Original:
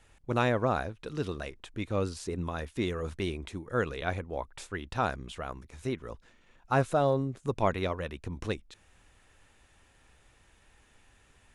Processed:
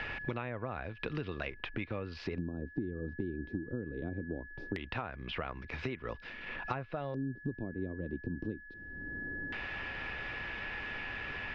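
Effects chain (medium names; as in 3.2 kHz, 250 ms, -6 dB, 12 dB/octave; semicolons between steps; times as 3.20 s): low-pass that closes with the level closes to 2 kHz, closed at -24 dBFS; compression 4:1, threshold -40 dBFS, peak gain reduction 16.5 dB; LFO low-pass square 0.21 Hz 300–2500 Hz; four-pole ladder low-pass 5.5 kHz, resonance 65%; whistle 1.7 kHz -72 dBFS; three bands compressed up and down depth 100%; trim +13.5 dB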